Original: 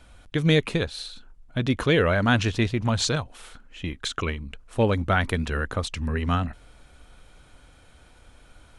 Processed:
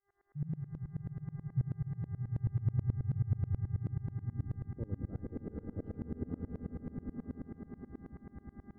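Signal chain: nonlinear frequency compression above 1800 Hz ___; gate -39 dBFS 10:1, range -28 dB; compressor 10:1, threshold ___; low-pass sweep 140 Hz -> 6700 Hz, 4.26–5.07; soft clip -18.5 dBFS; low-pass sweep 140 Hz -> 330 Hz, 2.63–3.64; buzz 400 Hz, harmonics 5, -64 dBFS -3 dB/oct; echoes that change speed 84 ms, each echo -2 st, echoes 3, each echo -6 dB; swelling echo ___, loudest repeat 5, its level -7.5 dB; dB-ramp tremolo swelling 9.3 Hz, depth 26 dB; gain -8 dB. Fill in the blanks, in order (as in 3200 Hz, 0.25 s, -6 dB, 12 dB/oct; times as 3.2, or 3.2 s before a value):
1.5:1, -27 dBFS, 0.115 s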